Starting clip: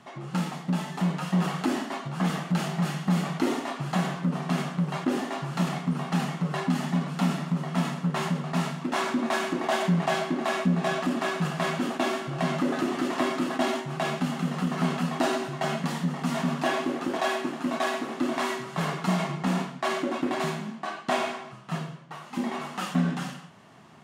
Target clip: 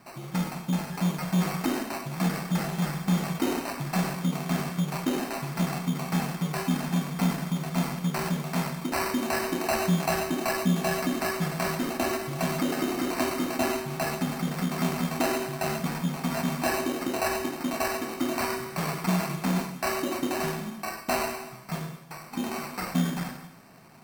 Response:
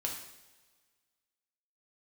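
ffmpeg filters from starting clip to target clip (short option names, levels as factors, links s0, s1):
-filter_complex "[0:a]acrusher=samples=13:mix=1:aa=0.000001,asplit=2[s0][s1];[1:a]atrim=start_sample=2205,asetrate=32634,aresample=44100,highshelf=f=9700:g=9.5[s2];[s1][s2]afir=irnorm=-1:irlink=0,volume=0.355[s3];[s0][s3]amix=inputs=2:normalize=0,volume=0.631"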